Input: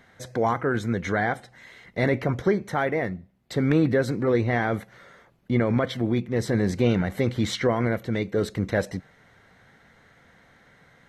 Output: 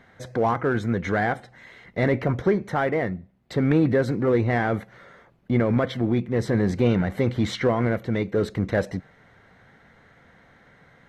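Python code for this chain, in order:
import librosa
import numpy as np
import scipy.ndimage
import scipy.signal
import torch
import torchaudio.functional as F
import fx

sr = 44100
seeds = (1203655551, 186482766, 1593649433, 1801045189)

p1 = fx.high_shelf(x, sr, hz=4200.0, db=-10.0)
p2 = np.clip(p1, -10.0 ** (-24.5 / 20.0), 10.0 ** (-24.5 / 20.0))
y = p1 + (p2 * 10.0 ** (-9.5 / 20.0))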